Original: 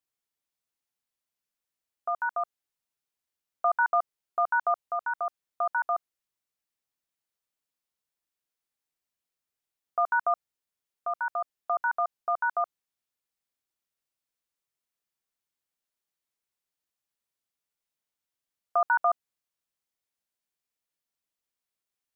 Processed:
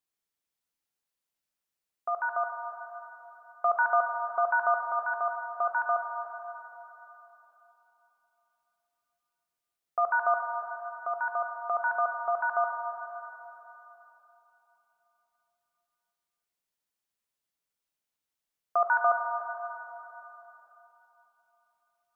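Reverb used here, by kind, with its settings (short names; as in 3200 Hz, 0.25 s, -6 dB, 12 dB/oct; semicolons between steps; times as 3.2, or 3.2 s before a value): plate-style reverb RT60 3.6 s, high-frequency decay 0.9×, DRR 3.5 dB; gain -1 dB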